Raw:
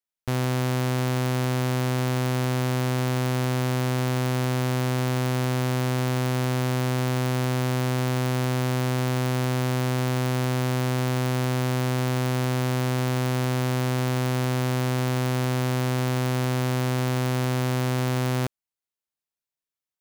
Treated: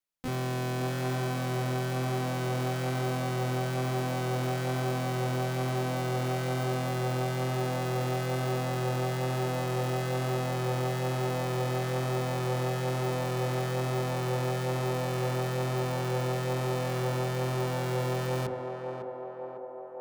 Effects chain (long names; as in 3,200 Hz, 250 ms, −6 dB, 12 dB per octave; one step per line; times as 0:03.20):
high-shelf EQ 2,600 Hz −2.5 dB
hum removal 51.87 Hz, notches 20
pitch vibrato 1.1 Hz 16 cents
pitch-shifted copies added +5 semitones −11 dB, +12 semitones −2 dB
soft clipping −29.5 dBFS, distortion −9 dB
on a send: feedback echo with a band-pass in the loop 553 ms, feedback 80%, band-pass 610 Hz, level −3.5 dB